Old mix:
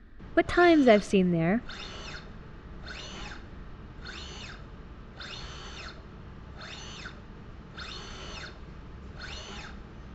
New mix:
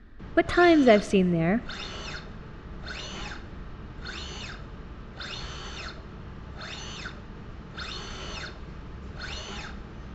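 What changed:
speech: send +9.0 dB
background +4.0 dB

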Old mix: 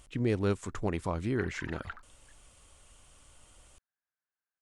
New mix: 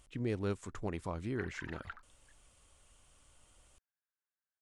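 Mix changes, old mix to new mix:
speech −6.5 dB
background −4.0 dB

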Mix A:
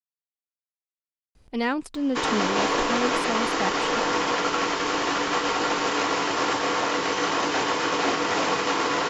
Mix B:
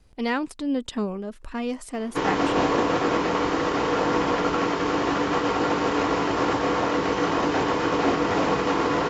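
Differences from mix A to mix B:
speech: entry −1.35 s
background: add spectral tilt −3 dB per octave

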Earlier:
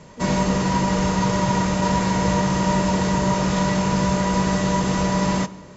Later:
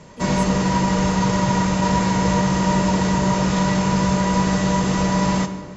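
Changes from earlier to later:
speech: remove low-pass filter 1,300 Hz 6 dB per octave
background: send +9.5 dB

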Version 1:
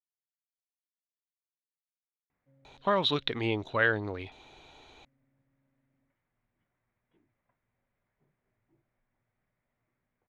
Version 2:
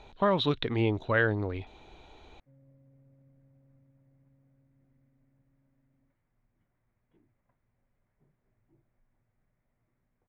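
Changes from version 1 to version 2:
speech: entry −2.65 s
master: add spectral tilt −2 dB per octave

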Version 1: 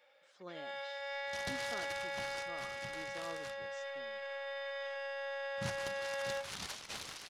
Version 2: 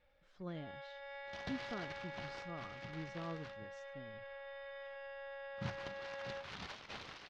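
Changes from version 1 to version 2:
speech: remove band-pass filter 360–4,800 Hz
first sound −6.5 dB
master: add high-frequency loss of the air 230 metres

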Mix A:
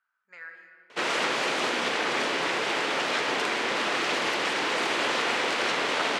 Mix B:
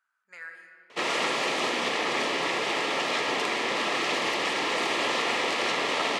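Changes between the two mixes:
speech: remove high-frequency loss of the air 120 metres
background: add Butterworth band-reject 1,500 Hz, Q 6.6

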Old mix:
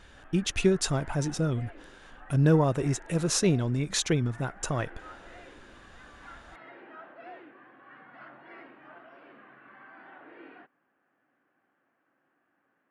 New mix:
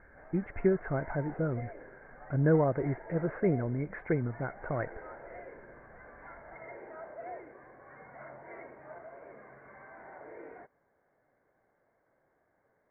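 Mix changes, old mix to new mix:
background: remove loudspeaker in its box 270–2,200 Hz, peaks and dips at 280 Hz +5 dB, 440 Hz −9 dB, 620 Hz −7 dB, 950 Hz −8 dB, 1,500 Hz +4 dB, 2,200 Hz −4 dB
master: add Chebyshev low-pass with heavy ripple 2,200 Hz, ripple 6 dB

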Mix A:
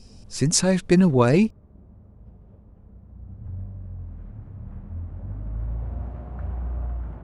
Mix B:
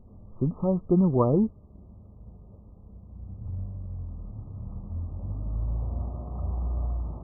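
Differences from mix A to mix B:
speech −4.5 dB
master: add linear-phase brick-wall low-pass 1,300 Hz

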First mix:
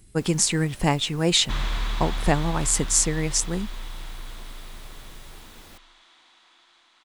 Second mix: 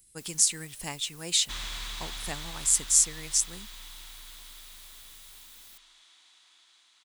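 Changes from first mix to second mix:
second sound +5.0 dB
master: add first-order pre-emphasis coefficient 0.9

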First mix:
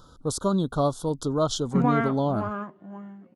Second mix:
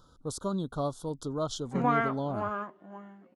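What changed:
speech −8.0 dB
background: add parametric band 130 Hz −12.5 dB 1.8 octaves

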